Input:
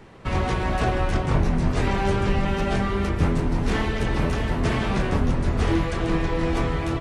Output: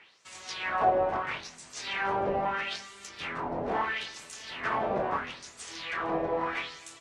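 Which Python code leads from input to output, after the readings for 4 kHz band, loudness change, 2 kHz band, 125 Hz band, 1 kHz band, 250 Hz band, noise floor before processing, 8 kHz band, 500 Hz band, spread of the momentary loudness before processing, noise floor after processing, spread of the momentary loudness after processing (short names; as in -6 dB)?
-3.5 dB, -7.5 dB, -3.5 dB, -24.0 dB, -1.5 dB, -15.5 dB, -27 dBFS, -2.5 dB, -5.5 dB, 2 LU, -53 dBFS, 13 LU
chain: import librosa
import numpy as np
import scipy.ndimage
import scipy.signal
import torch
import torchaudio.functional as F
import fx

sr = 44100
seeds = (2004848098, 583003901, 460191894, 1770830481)

y = fx.filter_lfo_bandpass(x, sr, shape='sine', hz=0.76, low_hz=600.0, high_hz=7900.0, q=2.9)
y = F.gain(torch.from_numpy(y), 5.5).numpy()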